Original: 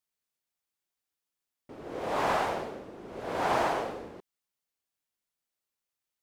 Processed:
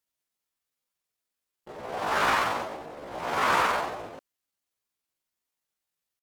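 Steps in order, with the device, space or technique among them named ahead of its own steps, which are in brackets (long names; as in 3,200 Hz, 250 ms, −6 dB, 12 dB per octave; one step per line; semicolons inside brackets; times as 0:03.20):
chipmunk voice (pitch shifter +6.5 semitones)
level +4 dB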